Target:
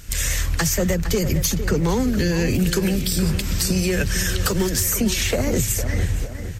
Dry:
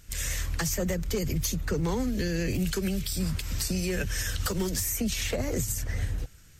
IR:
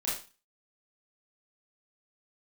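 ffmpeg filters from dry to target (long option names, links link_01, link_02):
-filter_complex "[0:a]asplit=2[link_01][link_02];[link_02]acompressor=threshold=-37dB:ratio=6,volume=0.5dB[link_03];[link_01][link_03]amix=inputs=2:normalize=0,asplit=2[link_04][link_05];[link_05]adelay=458,lowpass=frequency=2900:poles=1,volume=-10dB,asplit=2[link_06][link_07];[link_07]adelay=458,lowpass=frequency=2900:poles=1,volume=0.51,asplit=2[link_08][link_09];[link_09]adelay=458,lowpass=frequency=2900:poles=1,volume=0.51,asplit=2[link_10][link_11];[link_11]adelay=458,lowpass=frequency=2900:poles=1,volume=0.51,asplit=2[link_12][link_13];[link_13]adelay=458,lowpass=frequency=2900:poles=1,volume=0.51,asplit=2[link_14][link_15];[link_15]adelay=458,lowpass=frequency=2900:poles=1,volume=0.51[link_16];[link_04][link_06][link_08][link_10][link_12][link_14][link_16]amix=inputs=7:normalize=0,volume=6dB"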